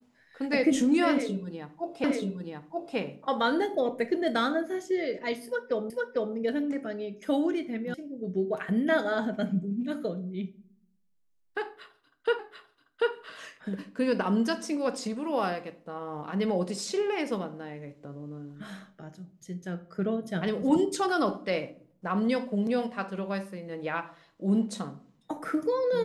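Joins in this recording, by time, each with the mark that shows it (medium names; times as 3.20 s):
2.04 s: repeat of the last 0.93 s
5.90 s: repeat of the last 0.45 s
7.94 s: sound stops dead
12.39 s: repeat of the last 0.74 s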